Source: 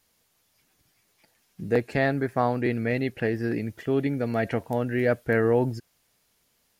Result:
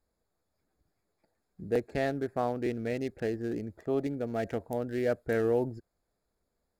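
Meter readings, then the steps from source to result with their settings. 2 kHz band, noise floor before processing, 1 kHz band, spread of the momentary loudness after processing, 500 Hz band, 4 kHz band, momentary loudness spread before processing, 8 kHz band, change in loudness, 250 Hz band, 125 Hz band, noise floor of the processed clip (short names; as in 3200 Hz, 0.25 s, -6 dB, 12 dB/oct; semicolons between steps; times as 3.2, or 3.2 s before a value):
-10.5 dB, -69 dBFS, -7.0 dB, 6 LU, -5.0 dB, -6.0 dB, 6 LU, n/a, -6.0 dB, -6.5 dB, -9.5 dB, -81 dBFS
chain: Wiener smoothing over 15 samples; spectral gain 3.77–4.06, 530–1300 Hz +6 dB; graphic EQ 125/250/500/1000/2000/4000 Hz -11/-6/-3/-9/-9/-5 dB; gain +2 dB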